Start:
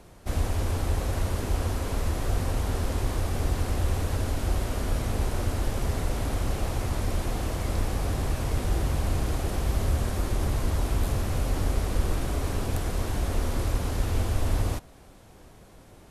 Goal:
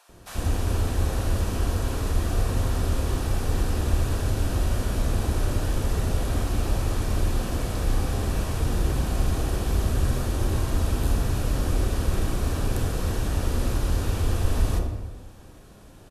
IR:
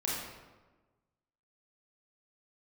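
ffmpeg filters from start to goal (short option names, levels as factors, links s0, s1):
-filter_complex "[0:a]bandreject=f=2100:w=8.5,acrossover=split=750[s0][s1];[s0]adelay=90[s2];[s2][s1]amix=inputs=2:normalize=0,asplit=2[s3][s4];[1:a]atrim=start_sample=2205[s5];[s4][s5]afir=irnorm=-1:irlink=0,volume=0.531[s6];[s3][s6]amix=inputs=2:normalize=0,volume=0.794"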